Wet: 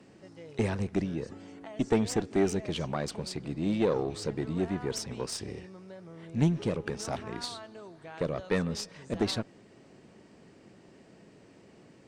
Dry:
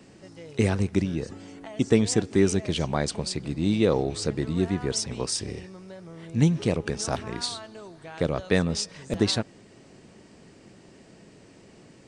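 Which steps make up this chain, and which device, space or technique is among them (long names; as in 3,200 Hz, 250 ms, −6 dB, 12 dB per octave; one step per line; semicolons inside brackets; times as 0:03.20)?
tube preamp driven hard (tube saturation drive 14 dB, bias 0.6; low-shelf EQ 90 Hz −7 dB; high-shelf EQ 3,600 Hz −7.5 dB)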